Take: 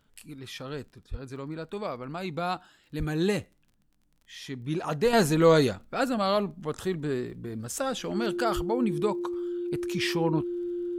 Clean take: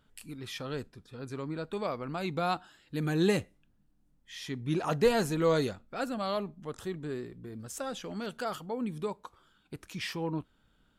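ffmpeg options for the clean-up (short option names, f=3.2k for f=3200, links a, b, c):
-filter_complex "[0:a]adeclick=t=4,bandreject=f=350:w=30,asplit=3[a][b][c];[a]afade=t=out:st=1.1:d=0.02[d];[b]highpass=f=140:w=0.5412,highpass=f=140:w=1.3066,afade=t=in:st=1.1:d=0.02,afade=t=out:st=1.22:d=0.02[e];[c]afade=t=in:st=1.22:d=0.02[f];[d][e][f]amix=inputs=3:normalize=0,asplit=3[g][h][i];[g]afade=t=out:st=2.98:d=0.02[j];[h]highpass=f=140:w=0.5412,highpass=f=140:w=1.3066,afade=t=in:st=2.98:d=0.02,afade=t=out:st=3.1:d=0.02[k];[i]afade=t=in:st=3.1:d=0.02[l];[j][k][l]amix=inputs=3:normalize=0,asplit=3[m][n][o];[m]afade=t=out:st=8.55:d=0.02[p];[n]highpass=f=140:w=0.5412,highpass=f=140:w=1.3066,afade=t=in:st=8.55:d=0.02,afade=t=out:st=8.67:d=0.02[q];[o]afade=t=in:st=8.67:d=0.02[r];[p][q][r]amix=inputs=3:normalize=0,asetnsamples=n=441:p=0,asendcmd='5.13 volume volume -7dB',volume=0dB"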